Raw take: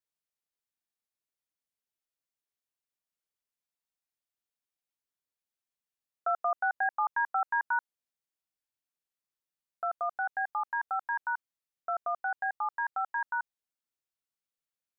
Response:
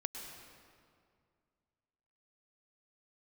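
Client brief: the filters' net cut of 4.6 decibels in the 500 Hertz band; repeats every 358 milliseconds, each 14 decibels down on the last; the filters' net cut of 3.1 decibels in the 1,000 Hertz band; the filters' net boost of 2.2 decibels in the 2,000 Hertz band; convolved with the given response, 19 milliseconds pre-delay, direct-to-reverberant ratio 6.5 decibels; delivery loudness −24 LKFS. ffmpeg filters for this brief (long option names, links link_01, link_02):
-filter_complex "[0:a]equalizer=frequency=500:width_type=o:gain=-6,equalizer=frequency=1000:width_type=o:gain=-4,equalizer=frequency=2000:width_type=o:gain=6,aecho=1:1:358|716:0.2|0.0399,asplit=2[link_01][link_02];[1:a]atrim=start_sample=2205,adelay=19[link_03];[link_02][link_03]afir=irnorm=-1:irlink=0,volume=-6.5dB[link_04];[link_01][link_04]amix=inputs=2:normalize=0,volume=7dB"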